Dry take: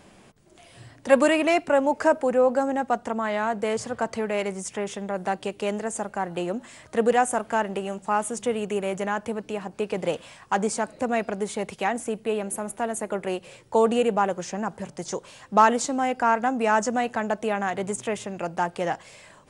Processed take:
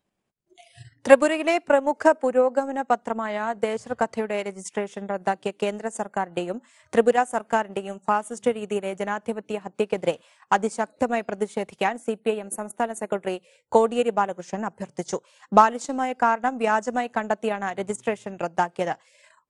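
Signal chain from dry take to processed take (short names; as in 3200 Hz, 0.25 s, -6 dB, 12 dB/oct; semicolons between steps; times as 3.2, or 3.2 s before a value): spectral noise reduction 25 dB; transient shaper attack +8 dB, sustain -8 dB; gain -2.5 dB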